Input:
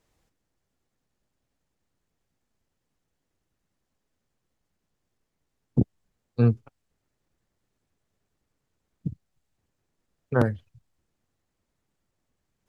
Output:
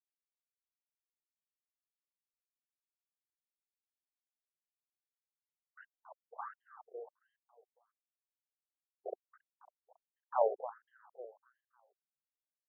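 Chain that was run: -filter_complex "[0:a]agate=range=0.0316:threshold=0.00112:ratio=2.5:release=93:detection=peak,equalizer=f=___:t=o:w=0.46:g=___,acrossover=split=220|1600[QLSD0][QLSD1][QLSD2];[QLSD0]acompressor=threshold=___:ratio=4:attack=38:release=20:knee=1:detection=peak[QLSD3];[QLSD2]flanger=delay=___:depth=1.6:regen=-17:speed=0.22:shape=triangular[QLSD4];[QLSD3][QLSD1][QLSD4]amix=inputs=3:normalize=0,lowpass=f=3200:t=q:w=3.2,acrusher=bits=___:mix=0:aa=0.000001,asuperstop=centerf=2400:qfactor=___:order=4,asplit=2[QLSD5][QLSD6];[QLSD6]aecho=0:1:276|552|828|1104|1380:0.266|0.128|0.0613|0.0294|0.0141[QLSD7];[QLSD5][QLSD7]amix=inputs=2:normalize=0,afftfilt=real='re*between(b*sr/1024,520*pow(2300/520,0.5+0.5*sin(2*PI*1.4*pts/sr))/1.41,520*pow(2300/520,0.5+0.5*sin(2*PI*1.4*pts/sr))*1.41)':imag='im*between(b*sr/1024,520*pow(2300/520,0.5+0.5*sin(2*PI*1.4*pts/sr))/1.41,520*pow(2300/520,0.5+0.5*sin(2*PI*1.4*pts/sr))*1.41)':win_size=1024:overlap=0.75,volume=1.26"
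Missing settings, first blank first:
190, 10.5, 0.0398, 8.8, 4, 0.55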